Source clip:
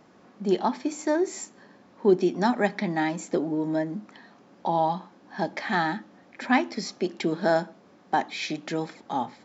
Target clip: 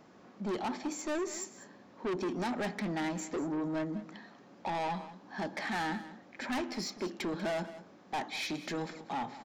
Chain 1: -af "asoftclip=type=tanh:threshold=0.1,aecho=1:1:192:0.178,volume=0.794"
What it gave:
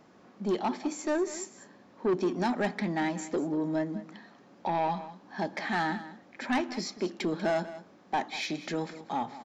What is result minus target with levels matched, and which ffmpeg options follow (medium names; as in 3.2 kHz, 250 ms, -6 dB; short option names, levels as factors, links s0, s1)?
saturation: distortion -6 dB
-af "asoftclip=type=tanh:threshold=0.0355,aecho=1:1:192:0.178,volume=0.794"